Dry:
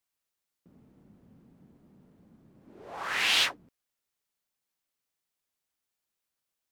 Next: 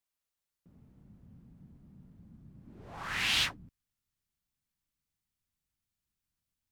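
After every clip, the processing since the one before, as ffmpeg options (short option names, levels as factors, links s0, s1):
-af "asubboost=boost=10.5:cutoff=160,volume=0.631"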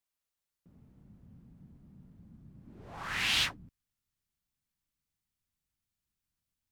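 -af anull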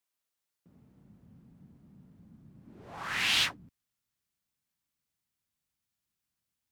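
-af "highpass=f=150:p=1,volume=1.26"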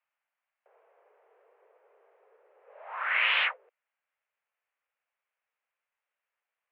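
-af "highpass=f=350:t=q:w=0.5412,highpass=f=350:t=q:w=1.307,lowpass=f=2400:t=q:w=0.5176,lowpass=f=2400:t=q:w=0.7071,lowpass=f=2400:t=q:w=1.932,afreqshift=220,volume=2.37"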